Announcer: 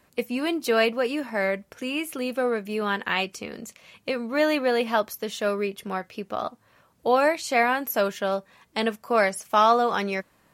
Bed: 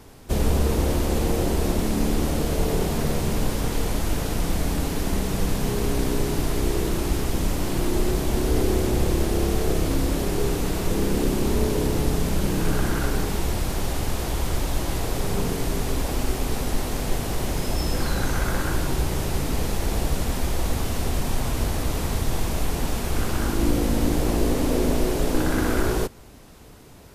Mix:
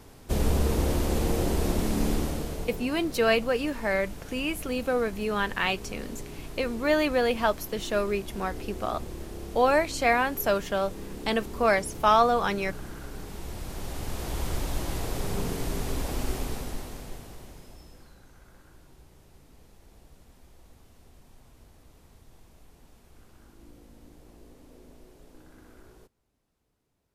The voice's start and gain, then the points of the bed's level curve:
2.50 s, -1.5 dB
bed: 2.12 s -3.5 dB
2.89 s -16.5 dB
13.06 s -16.5 dB
14.41 s -5.5 dB
16.37 s -5.5 dB
18.22 s -30.5 dB

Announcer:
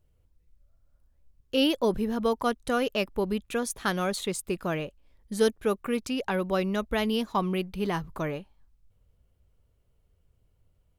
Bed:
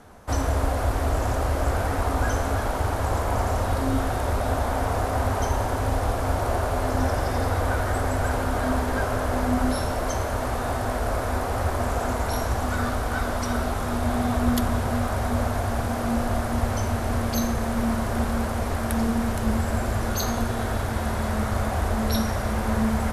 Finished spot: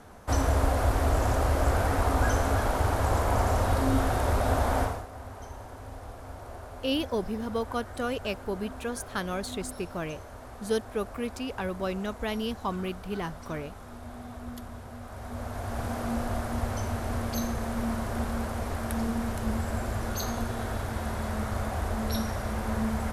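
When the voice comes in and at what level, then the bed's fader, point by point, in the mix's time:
5.30 s, -4.5 dB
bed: 4.82 s -1 dB
5.07 s -18 dB
14.99 s -18 dB
15.85 s -6 dB

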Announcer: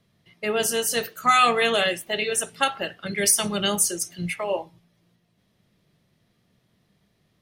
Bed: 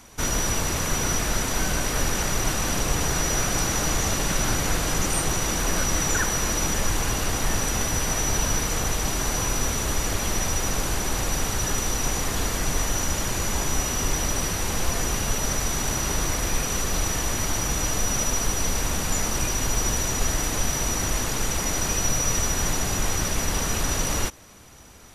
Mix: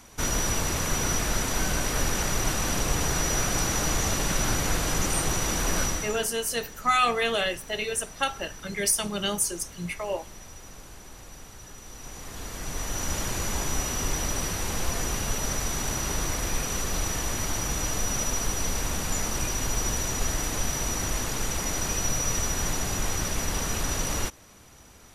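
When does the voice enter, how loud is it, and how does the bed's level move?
5.60 s, -4.5 dB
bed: 5.85 s -2 dB
6.32 s -20 dB
11.78 s -20 dB
13.14 s -3.5 dB

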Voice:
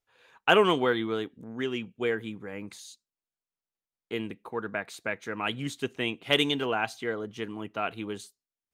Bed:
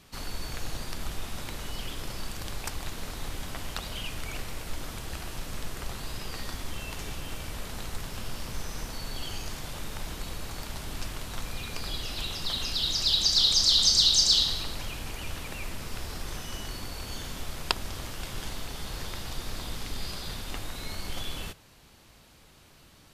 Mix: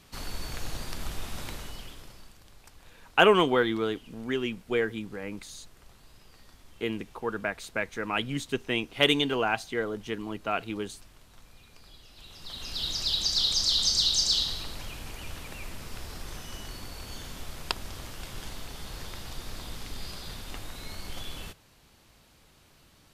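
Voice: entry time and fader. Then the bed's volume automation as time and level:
2.70 s, +1.5 dB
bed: 1.50 s -0.5 dB
2.42 s -18.5 dB
12.12 s -18.5 dB
12.81 s -3.5 dB

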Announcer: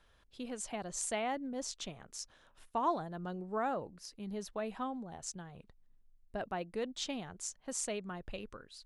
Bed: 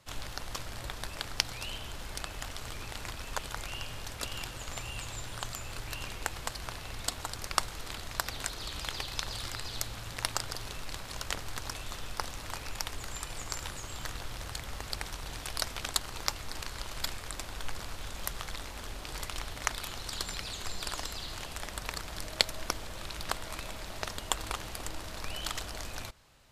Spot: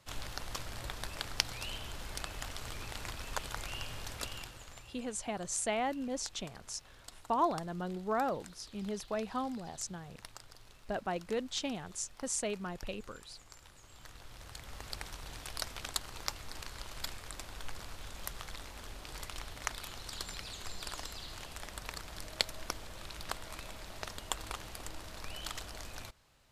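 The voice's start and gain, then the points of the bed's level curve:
4.55 s, +2.5 dB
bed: 4.18 s -2 dB
5.05 s -18 dB
13.67 s -18 dB
14.87 s -5.5 dB

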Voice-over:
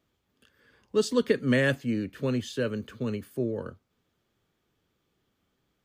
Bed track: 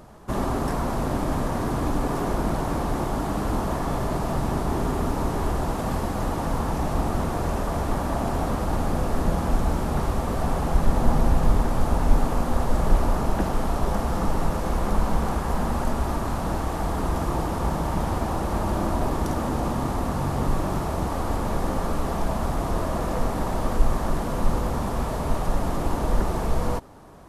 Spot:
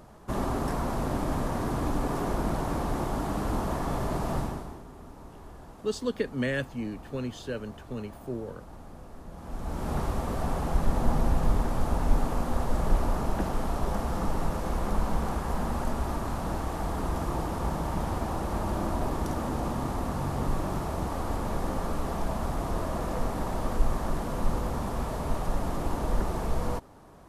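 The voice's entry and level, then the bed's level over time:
4.90 s, -5.5 dB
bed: 4.39 s -4 dB
4.84 s -21.5 dB
9.29 s -21.5 dB
9.90 s -5 dB

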